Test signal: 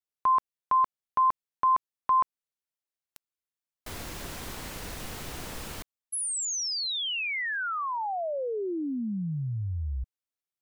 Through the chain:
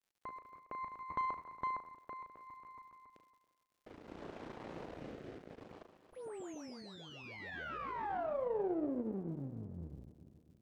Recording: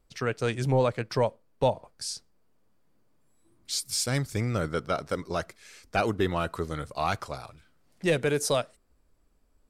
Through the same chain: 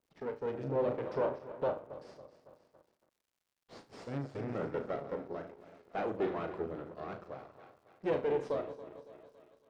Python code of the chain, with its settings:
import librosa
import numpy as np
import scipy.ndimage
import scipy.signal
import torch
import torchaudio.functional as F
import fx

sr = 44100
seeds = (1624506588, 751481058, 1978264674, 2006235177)

p1 = fx.reverse_delay_fb(x, sr, ms=139, feedback_pct=70, wet_db=-13)
p2 = fx.rotary(p1, sr, hz=0.6)
p3 = fx.low_shelf(p2, sr, hz=420.0, db=-4.0)
p4 = fx.room_flutter(p3, sr, wall_m=6.2, rt60_s=0.27)
p5 = np.maximum(p4, 0.0)
p6 = fx.air_absorb(p5, sr, metres=66.0)
p7 = np.clip(p6, -10.0 ** (-27.0 / 20.0), 10.0 ** (-27.0 / 20.0))
p8 = p6 + (p7 * 10.0 ** (-9.0 / 20.0))
p9 = fx.bandpass_q(p8, sr, hz=380.0, q=0.79)
p10 = fx.dmg_crackle(p9, sr, seeds[0], per_s=170.0, level_db=-67.0)
y = p10 * 10.0 ** (1.0 / 20.0)